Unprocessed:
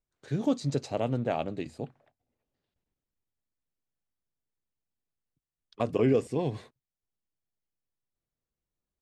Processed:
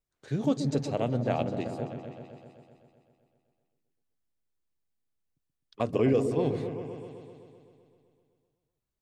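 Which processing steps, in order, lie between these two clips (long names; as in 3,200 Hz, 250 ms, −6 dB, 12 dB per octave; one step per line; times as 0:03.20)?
echo whose low-pass opens from repeat to repeat 128 ms, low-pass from 400 Hz, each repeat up 1 octave, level −6 dB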